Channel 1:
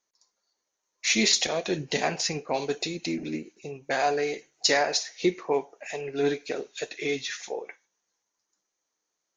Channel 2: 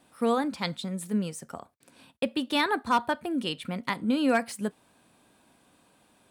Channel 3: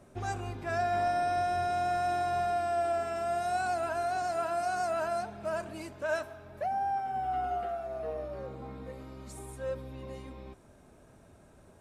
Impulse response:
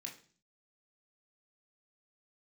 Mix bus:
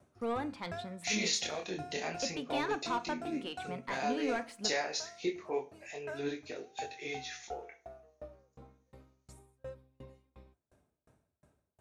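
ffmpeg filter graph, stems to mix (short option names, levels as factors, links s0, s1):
-filter_complex "[0:a]flanger=delay=20:depth=6.5:speed=0.31,volume=0.355,asplit=3[s0][s1][s2];[s1]volume=0.631[s3];[1:a]agate=range=0.178:threshold=0.00355:ratio=16:detection=peak,asplit=2[s4][s5];[s5]highpass=f=720:p=1,volume=5.62,asoftclip=type=tanh:threshold=0.237[s6];[s4][s6]amix=inputs=2:normalize=0,lowpass=f=1300:p=1,volume=0.501,volume=0.237,asplit=2[s7][s8];[s8]volume=0.447[s9];[2:a]highpass=76,flanger=delay=6.5:depth=1.3:regen=84:speed=0.36:shape=triangular,aeval=exprs='val(0)*pow(10,-34*if(lt(mod(2.8*n/s,1),2*abs(2.8)/1000),1-mod(2.8*n/s,1)/(2*abs(2.8)/1000),(mod(2.8*n/s,1)-2*abs(2.8)/1000)/(1-2*abs(2.8)/1000))/20)':c=same,volume=0.794[s10];[s2]apad=whole_len=520444[s11];[s10][s11]sidechaincompress=threshold=0.0112:ratio=8:attack=16:release=563[s12];[3:a]atrim=start_sample=2205[s13];[s3][s9]amix=inputs=2:normalize=0[s14];[s14][s13]afir=irnorm=-1:irlink=0[s15];[s0][s7][s12][s15]amix=inputs=4:normalize=0,equalizer=f=64:w=1.2:g=8.5"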